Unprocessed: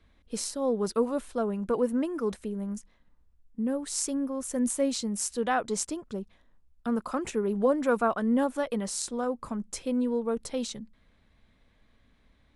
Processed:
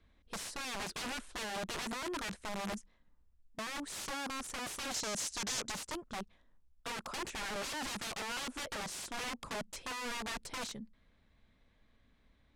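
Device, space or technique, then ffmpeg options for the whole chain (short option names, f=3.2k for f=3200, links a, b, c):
overflowing digital effects unit: -filter_complex "[0:a]aeval=exprs='(mod(29.9*val(0)+1,2)-1)/29.9':c=same,lowpass=9.3k,asettb=1/sr,asplit=3[a][b][c];[a]atrim=end=4.944[d];[b]atrim=start=4.94:end=5.72,asetpts=PTS-STARTPTS,afade=t=in:d=0.004:c=qsin,afade=t=out:st=0.776:d=0.004:c=qsin,equalizer=f=6.3k:t=o:w=0.93:g=10[e];[c]atrim=start=5.716[f];[d][e]acrossfade=d=0.004:c1=hsin:c2=qsin[g];[g][f]acrossfade=d=0.004:c1=qsin:c2=hsin,volume=-5dB"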